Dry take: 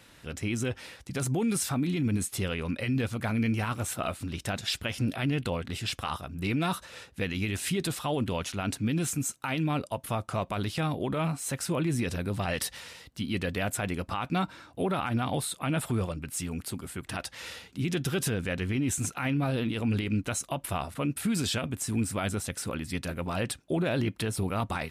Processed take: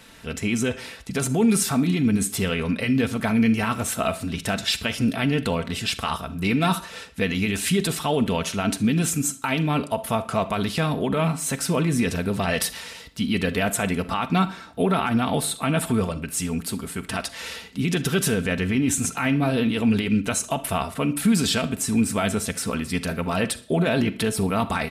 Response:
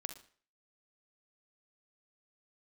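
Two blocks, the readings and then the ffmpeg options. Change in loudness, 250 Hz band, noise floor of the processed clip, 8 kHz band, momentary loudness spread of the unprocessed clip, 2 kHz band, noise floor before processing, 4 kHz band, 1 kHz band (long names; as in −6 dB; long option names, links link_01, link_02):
+7.5 dB, +8.5 dB, −41 dBFS, +7.5 dB, 6 LU, +7.5 dB, −56 dBFS, +7.5 dB, +7.5 dB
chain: -filter_complex "[0:a]aecho=1:1:4.5:0.47,asplit=2[link_01][link_02];[1:a]atrim=start_sample=2205[link_03];[link_02][link_03]afir=irnorm=-1:irlink=0,volume=1.5dB[link_04];[link_01][link_04]amix=inputs=2:normalize=0,volume=1dB"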